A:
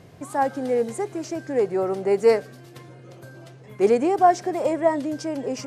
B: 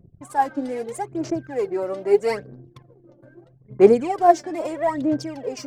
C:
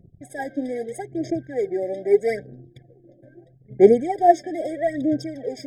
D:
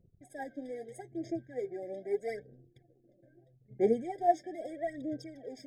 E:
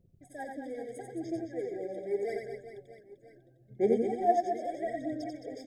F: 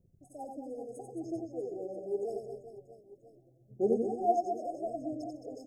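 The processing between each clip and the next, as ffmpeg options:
-af "anlmdn=0.631,aphaser=in_gain=1:out_gain=1:delay=3.5:decay=0.71:speed=0.78:type=sinusoidal,volume=0.668"
-af "afftfilt=real='re*eq(mod(floor(b*sr/1024/780),2),0)':imag='im*eq(mod(floor(b*sr/1024/780),2),0)':win_size=1024:overlap=0.75"
-af "flanger=delay=2:depth=7:regen=52:speed=0.39:shape=sinusoidal,volume=0.355"
-af "aecho=1:1:90|216|392.4|639.4|985.1:0.631|0.398|0.251|0.158|0.1"
-af "asuperstop=centerf=2300:order=20:qfactor=0.53,volume=0.794"

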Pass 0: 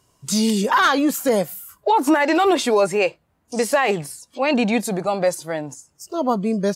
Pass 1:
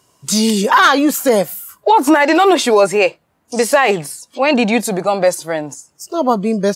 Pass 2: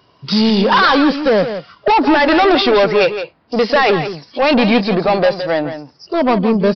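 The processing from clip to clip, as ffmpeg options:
-af "highpass=f=190:p=1,volume=2.11"
-af "aresample=11025,asoftclip=type=tanh:threshold=0.2,aresample=44100,aecho=1:1:167:0.316,volume=1.88"

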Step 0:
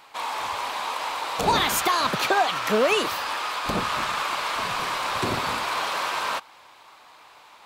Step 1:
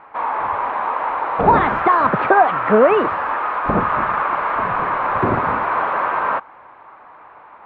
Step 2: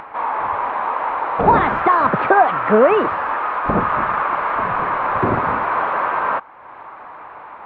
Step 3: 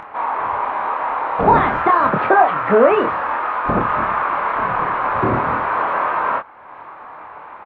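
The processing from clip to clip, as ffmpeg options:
-af "lowpass=f=1700:w=0.5412,lowpass=f=1700:w=1.3066,volume=2.82"
-af "acompressor=mode=upward:threshold=0.0398:ratio=2.5"
-filter_complex "[0:a]asplit=2[s0][s1];[s1]adelay=26,volume=0.562[s2];[s0][s2]amix=inputs=2:normalize=0,volume=0.891"

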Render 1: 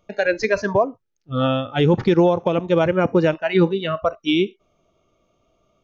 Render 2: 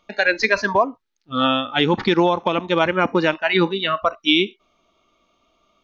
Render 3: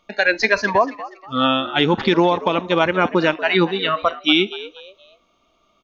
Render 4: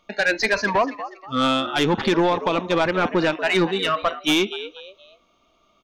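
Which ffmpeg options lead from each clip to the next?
-af "equalizer=f=125:t=o:w=1:g=-10,equalizer=f=250:t=o:w=1:g=6,equalizer=f=500:t=o:w=1:g=-4,equalizer=f=1000:t=o:w=1:g=8,equalizer=f=2000:t=o:w=1:g=6,equalizer=f=4000:t=o:w=1:g=11,volume=0.75"
-filter_complex "[0:a]asplit=4[s0][s1][s2][s3];[s1]adelay=239,afreqshift=95,volume=0.158[s4];[s2]adelay=478,afreqshift=190,volume=0.0525[s5];[s3]adelay=717,afreqshift=285,volume=0.0172[s6];[s0][s4][s5][s6]amix=inputs=4:normalize=0,volume=1.12"
-af "asoftclip=type=tanh:threshold=0.237"

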